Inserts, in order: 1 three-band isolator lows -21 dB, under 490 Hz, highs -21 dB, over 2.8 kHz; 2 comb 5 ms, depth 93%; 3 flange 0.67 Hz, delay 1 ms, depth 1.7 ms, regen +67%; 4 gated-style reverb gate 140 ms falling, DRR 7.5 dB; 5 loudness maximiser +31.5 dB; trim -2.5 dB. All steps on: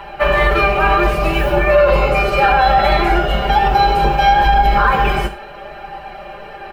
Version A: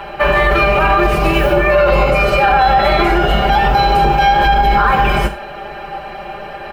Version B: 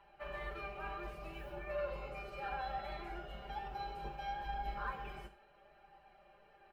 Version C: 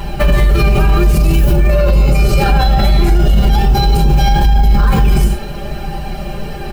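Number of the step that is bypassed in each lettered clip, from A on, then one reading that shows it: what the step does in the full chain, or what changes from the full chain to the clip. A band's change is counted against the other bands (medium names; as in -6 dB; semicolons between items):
3, momentary loudness spread change -3 LU; 5, crest factor change +5.5 dB; 1, 125 Hz band +14.0 dB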